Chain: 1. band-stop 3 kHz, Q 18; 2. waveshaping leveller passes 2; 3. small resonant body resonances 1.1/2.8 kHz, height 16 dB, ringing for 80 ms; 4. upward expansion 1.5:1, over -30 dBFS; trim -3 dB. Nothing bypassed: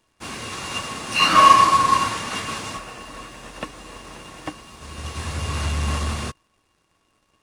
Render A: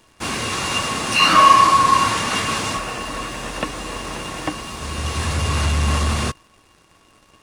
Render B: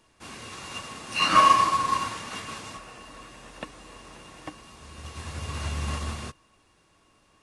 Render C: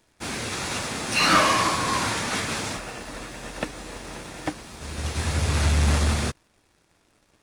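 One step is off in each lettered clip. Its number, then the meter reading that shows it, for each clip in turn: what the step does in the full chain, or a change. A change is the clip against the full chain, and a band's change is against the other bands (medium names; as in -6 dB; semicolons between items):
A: 4, 1 kHz band -3.0 dB; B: 2, momentary loudness spread change +1 LU; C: 3, 1 kHz band -10.5 dB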